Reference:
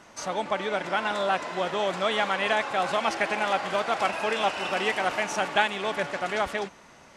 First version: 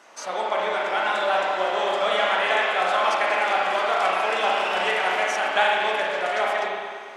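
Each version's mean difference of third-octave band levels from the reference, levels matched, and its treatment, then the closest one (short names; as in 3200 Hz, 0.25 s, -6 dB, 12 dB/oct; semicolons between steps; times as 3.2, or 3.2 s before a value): 5.5 dB: HPF 430 Hz 12 dB/oct; spring tank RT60 1.9 s, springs 32/53 ms, chirp 25 ms, DRR -3.5 dB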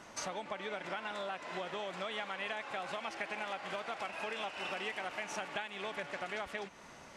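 3.0 dB: compressor 12:1, threshold -36 dBFS, peak gain reduction 19.5 dB; dynamic EQ 2400 Hz, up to +4 dB, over -54 dBFS, Q 1.3; gain -1.5 dB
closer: second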